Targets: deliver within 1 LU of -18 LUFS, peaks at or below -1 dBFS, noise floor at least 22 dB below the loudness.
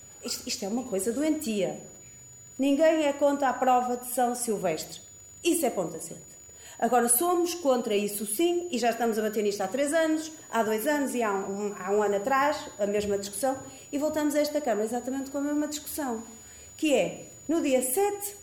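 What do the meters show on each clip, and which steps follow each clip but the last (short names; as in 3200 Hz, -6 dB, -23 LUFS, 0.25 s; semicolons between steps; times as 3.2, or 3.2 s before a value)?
ticks 48/s; steady tone 6900 Hz; tone level -47 dBFS; loudness -27.5 LUFS; peak -13.0 dBFS; loudness target -18.0 LUFS
-> de-click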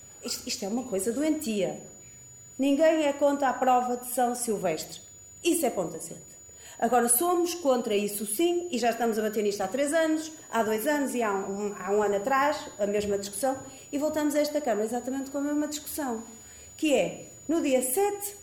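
ticks 0.65/s; steady tone 6900 Hz; tone level -47 dBFS
-> notch 6900 Hz, Q 30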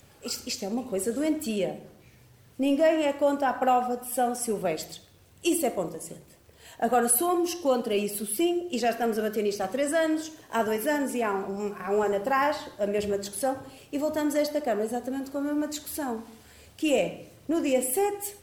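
steady tone none; loudness -27.5 LUFS; peak -13.0 dBFS; loudness target -18.0 LUFS
-> gain +9.5 dB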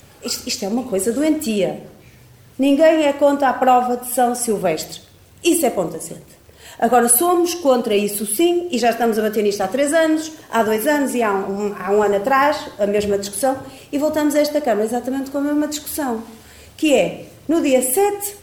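loudness -18.0 LUFS; peak -3.5 dBFS; noise floor -47 dBFS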